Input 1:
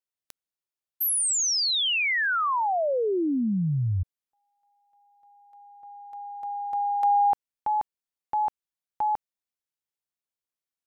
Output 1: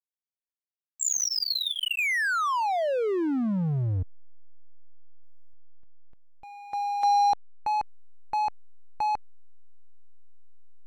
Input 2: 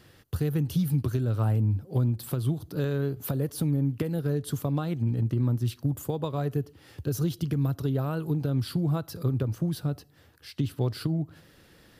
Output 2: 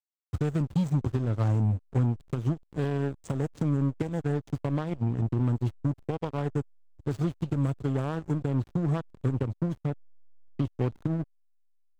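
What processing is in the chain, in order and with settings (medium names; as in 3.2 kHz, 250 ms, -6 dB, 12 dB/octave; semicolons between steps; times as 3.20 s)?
knee-point frequency compression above 2.6 kHz 1.5:1; Chebyshev shaper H 3 -38 dB, 7 -22 dB, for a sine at -15.5 dBFS; hysteresis with a dead band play -32 dBFS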